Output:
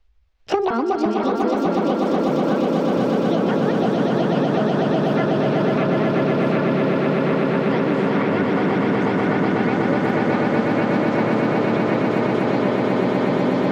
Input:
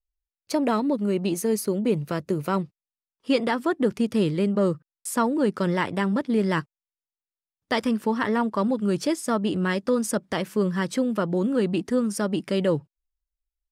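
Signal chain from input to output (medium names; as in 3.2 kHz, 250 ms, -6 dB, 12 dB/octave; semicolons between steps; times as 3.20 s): sawtooth pitch modulation +8 st, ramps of 351 ms; ever faster or slower copies 398 ms, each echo -3 st, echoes 3; distance through air 220 m; on a send: echo with a slow build-up 123 ms, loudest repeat 8, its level -4 dB; on the sum: three bands compressed up and down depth 100%; trim -3 dB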